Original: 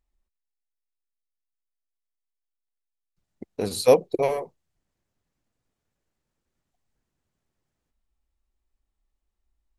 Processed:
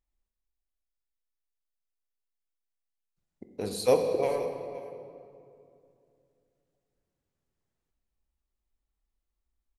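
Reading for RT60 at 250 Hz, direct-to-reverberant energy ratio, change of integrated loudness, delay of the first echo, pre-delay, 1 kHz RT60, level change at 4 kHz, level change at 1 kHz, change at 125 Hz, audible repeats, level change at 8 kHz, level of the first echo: 3.2 s, 4.5 dB, -6.0 dB, 0.52 s, 19 ms, 2.4 s, -5.5 dB, -5.0 dB, -5.0 dB, 1, -5.5 dB, -17.5 dB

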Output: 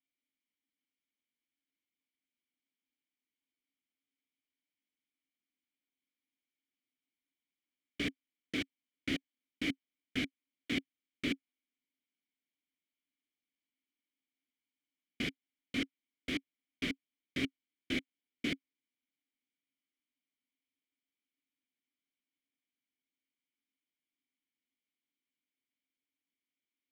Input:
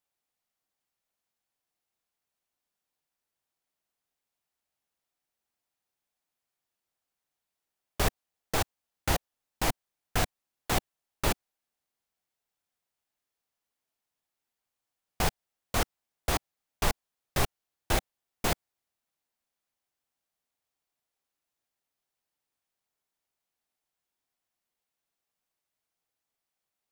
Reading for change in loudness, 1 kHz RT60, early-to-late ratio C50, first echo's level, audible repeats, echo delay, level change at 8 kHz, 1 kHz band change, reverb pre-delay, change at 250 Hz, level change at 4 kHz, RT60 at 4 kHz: -7.0 dB, none, none, none, none, none, -18.5 dB, -24.0 dB, none, +1.5 dB, -4.5 dB, none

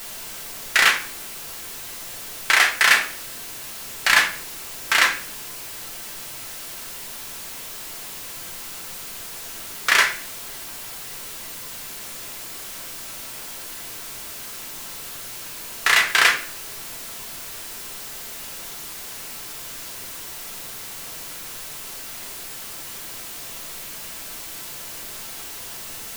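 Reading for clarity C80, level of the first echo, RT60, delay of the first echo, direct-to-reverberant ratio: 13.5 dB, none, 0.50 s, none, 2.5 dB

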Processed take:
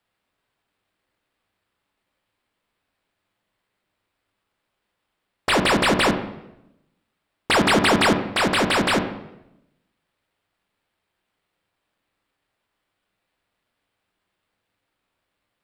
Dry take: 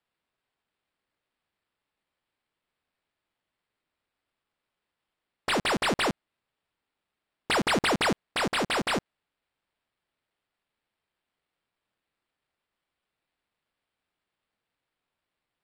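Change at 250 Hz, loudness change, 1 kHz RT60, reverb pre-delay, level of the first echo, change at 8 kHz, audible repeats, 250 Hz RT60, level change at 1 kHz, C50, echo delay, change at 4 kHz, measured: +9.0 dB, +7.5 dB, 0.80 s, 9 ms, none, +6.5 dB, none, 1.0 s, +7.5 dB, 9.0 dB, none, +7.0 dB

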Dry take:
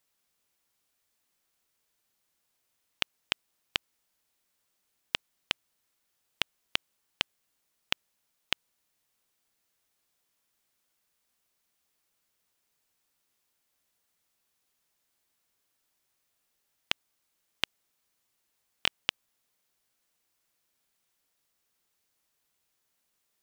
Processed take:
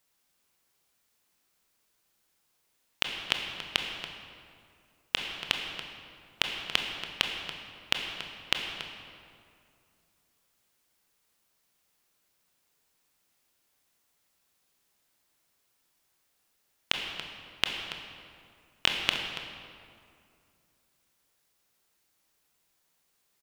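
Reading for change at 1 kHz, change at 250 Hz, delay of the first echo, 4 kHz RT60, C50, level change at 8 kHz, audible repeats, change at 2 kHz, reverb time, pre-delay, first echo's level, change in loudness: +5.0 dB, +5.5 dB, 0.282 s, 1.4 s, 3.5 dB, +3.5 dB, 1, +4.5 dB, 2.4 s, 21 ms, -12.5 dB, +2.5 dB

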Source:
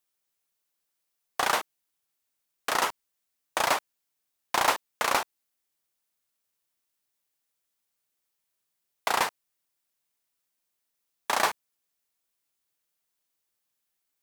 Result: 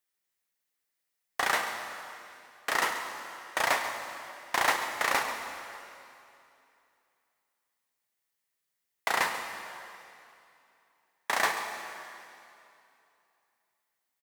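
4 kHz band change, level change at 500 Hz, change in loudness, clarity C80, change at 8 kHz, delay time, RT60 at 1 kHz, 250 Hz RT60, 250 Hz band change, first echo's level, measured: -2.0 dB, -2.5 dB, -3.0 dB, 6.0 dB, -2.5 dB, 0.137 s, 2.7 s, 2.7 s, -2.5 dB, -13.5 dB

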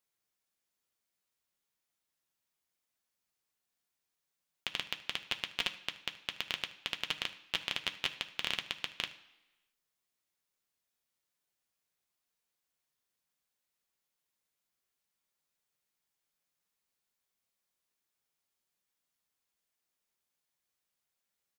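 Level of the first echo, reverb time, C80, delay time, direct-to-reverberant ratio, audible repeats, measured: -19.5 dB, 1.0 s, 16.5 dB, 76 ms, 6.0 dB, 1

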